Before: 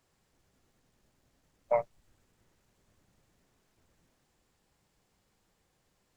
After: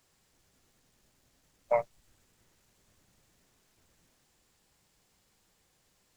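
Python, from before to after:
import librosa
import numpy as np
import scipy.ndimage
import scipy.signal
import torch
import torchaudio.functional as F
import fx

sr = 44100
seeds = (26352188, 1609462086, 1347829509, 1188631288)

y = fx.high_shelf(x, sr, hz=2200.0, db=7.5)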